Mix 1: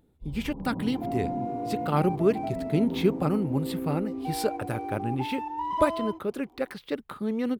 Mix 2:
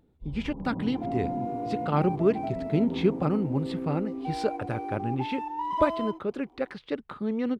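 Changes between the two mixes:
speech: add distance through air 110 m; second sound: add peaking EQ 78 Hz -13 dB 1.2 oct

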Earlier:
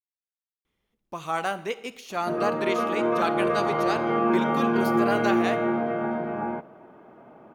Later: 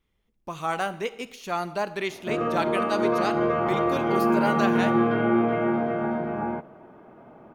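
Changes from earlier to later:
speech: entry -0.65 s; master: add bass shelf 99 Hz +10.5 dB

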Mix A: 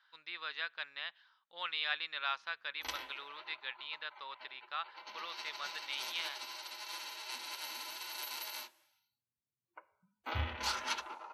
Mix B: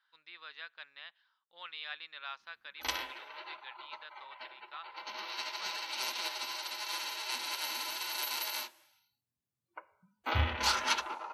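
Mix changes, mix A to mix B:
speech -7.0 dB; background +6.5 dB

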